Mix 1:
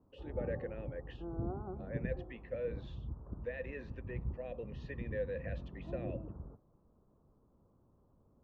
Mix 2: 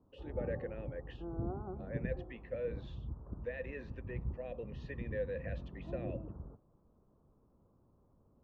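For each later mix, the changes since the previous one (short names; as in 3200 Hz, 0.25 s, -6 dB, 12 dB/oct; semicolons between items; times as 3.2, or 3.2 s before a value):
none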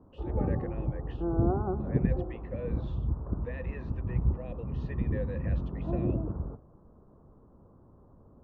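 background +10.5 dB; reverb: on, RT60 0.65 s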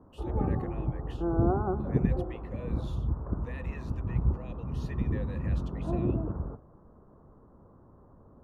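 speech -7.5 dB; master: remove tape spacing loss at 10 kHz 38 dB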